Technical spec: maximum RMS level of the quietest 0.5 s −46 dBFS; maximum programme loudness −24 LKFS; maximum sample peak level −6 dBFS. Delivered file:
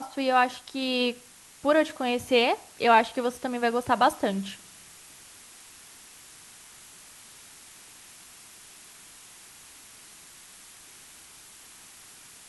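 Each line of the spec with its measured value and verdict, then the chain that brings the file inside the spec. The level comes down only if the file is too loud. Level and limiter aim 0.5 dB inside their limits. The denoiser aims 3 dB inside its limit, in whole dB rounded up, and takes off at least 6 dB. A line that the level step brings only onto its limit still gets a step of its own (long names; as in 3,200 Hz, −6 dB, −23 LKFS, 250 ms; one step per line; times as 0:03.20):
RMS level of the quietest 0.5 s −51 dBFS: in spec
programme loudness −25.5 LKFS: in spec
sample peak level −6.5 dBFS: in spec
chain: no processing needed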